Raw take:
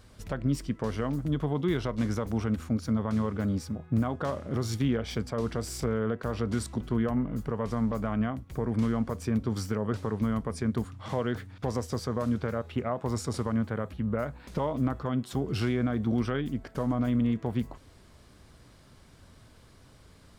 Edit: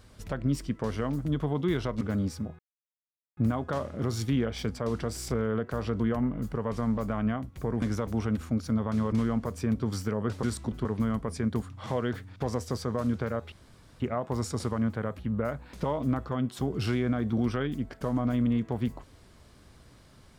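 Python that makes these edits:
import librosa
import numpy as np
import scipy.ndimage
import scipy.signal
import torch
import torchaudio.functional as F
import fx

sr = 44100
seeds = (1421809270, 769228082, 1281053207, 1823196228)

y = fx.edit(x, sr, fx.move(start_s=2.01, length_s=1.3, to_s=8.76),
    fx.insert_silence(at_s=3.89, length_s=0.78),
    fx.move(start_s=6.52, length_s=0.42, to_s=10.07),
    fx.insert_room_tone(at_s=12.74, length_s=0.48), tone=tone)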